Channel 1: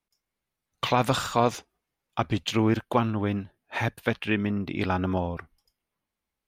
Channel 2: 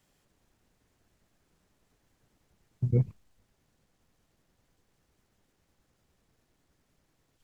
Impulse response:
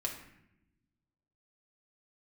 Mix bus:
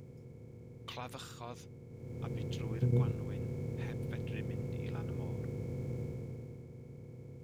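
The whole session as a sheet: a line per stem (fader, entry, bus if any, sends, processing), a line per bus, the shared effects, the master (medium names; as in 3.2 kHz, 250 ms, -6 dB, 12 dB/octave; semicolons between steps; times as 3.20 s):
-14.0 dB, 0.05 s, no send, auto duck -12 dB, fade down 1.30 s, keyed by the second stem
1.88 s -19 dB -> 2.28 s -7 dB -> 6.01 s -7 dB -> 6.67 s -17.5 dB, 0.00 s, no send, spectral levelling over time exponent 0.2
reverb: none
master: treble shelf 2 kHz +9 dB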